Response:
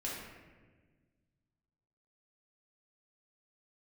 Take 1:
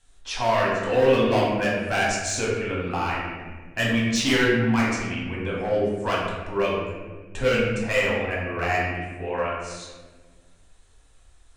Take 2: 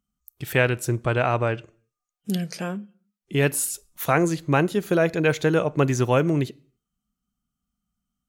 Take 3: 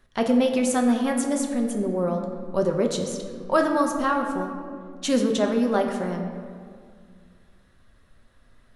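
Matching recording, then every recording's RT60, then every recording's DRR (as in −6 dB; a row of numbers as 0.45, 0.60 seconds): 1; 1.4, 0.50, 2.1 seconds; −5.5, 22.0, 2.5 decibels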